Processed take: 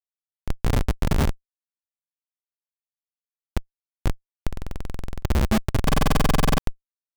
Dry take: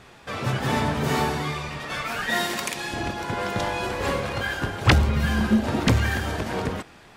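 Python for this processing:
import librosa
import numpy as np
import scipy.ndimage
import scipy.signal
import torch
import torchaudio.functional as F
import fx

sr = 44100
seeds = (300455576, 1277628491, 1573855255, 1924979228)

y = x + 10.0 ** (-13.0 / 20.0) * np.pad(x, (int(862 * sr / 1000.0), 0))[:len(x)]
y = fx.schmitt(y, sr, flips_db=-15.5)
y = fx.buffer_glitch(y, sr, at_s=(2.19, 4.48, 5.84), block=2048, repeats=15)
y = F.gain(torch.from_numpy(y), 6.5).numpy()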